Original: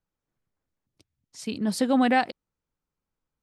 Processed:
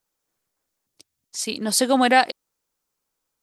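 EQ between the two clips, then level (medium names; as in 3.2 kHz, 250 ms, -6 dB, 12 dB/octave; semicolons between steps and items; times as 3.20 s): tone controls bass -13 dB, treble +9 dB; +6.5 dB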